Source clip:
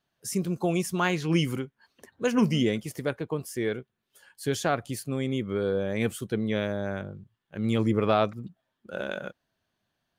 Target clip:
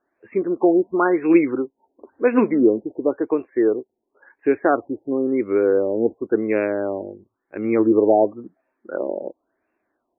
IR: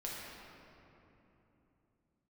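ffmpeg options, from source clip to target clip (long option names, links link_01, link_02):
-af "lowshelf=frequency=220:width_type=q:width=3:gain=-12,afftfilt=real='re*lt(b*sr/1024,910*pow(2800/910,0.5+0.5*sin(2*PI*0.95*pts/sr)))':imag='im*lt(b*sr/1024,910*pow(2800/910,0.5+0.5*sin(2*PI*0.95*pts/sr)))':win_size=1024:overlap=0.75,volume=6.5dB"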